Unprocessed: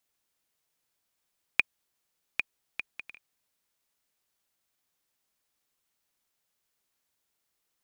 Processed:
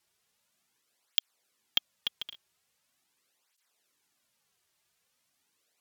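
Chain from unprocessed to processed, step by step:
wrong playback speed 33 rpm record played at 45 rpm
bad sample-rate conversion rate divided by 2×, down none, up hold
through-zero flanger with one copy inverted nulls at 0.42 Hz, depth 4.2 ms
level +8 dB

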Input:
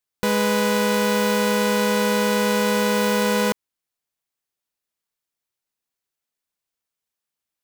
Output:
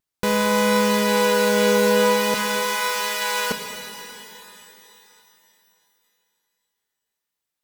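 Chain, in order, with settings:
pitch vibrato 0.47 Hz 8.9 cents
0:02.34–0:03.51: high-pass filter 970 Hz 12 dB per octave
reverb with rising layers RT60 3.2 s, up +12 semitones, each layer −8 dB, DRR 5.5 dB

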